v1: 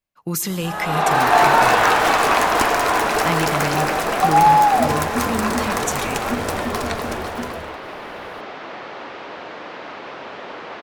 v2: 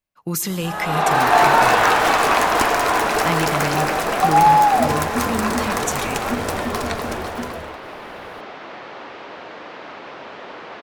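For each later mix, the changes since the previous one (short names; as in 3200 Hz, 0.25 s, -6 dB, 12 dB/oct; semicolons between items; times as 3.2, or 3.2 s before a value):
second sound: send -10.0 dB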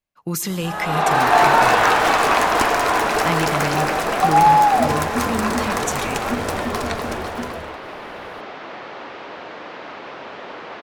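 second sound: send +7.5 dB; master: add high shelf 11000 Hz -4.5 dB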